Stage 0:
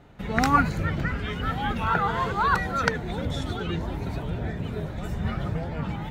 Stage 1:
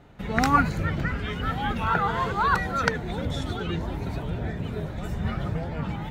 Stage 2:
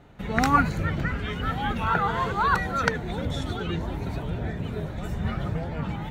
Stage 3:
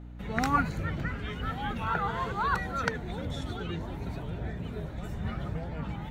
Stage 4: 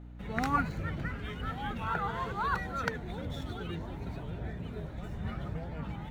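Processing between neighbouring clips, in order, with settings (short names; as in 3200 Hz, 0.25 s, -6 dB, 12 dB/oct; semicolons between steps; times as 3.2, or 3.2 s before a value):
nothing audible
notch 5000 Hz, Q 16
hum 60 Hz, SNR 11 dB; gain -6 dB
median filter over 5 samples; gain -3 dB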